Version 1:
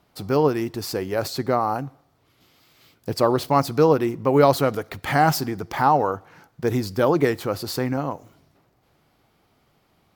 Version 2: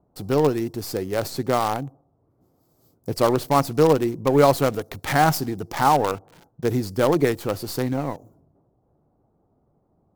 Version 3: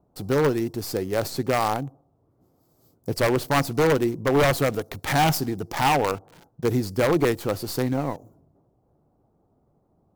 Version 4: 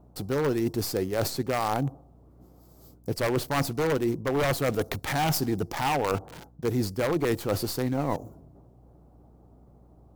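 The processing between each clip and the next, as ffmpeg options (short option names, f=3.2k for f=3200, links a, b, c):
-filter_complex "[0:a]acrossover=split=890|6000[a][b][c];[b]acrusher=bits=5:dc=4:mix=0:aa=0.000001[d];[c]agate=range=-33dB:threshold=-60dB:ratio=3:detection=peak[e];[a][d][e]amix=inputs=3:normalize=0"
-af "aeval=exprs='0.224*(abs(mod(val(0)/0.224+3,4)-2)-1)':c=same"
-af "areverse,acompressor=threshold=-31dB:ratio=6,areverse,aeval=exprs='val(0)+0.000794*(sin(2*PI*60*n/s)+sin(2*PI*2*60*n/s)/2+sin(2*PI*3*60*n/s)/3+sin(2*PI*4*60*n/s)/4+sin(2*PI*5*60*n/s)/5)':c=same,volume=7dB"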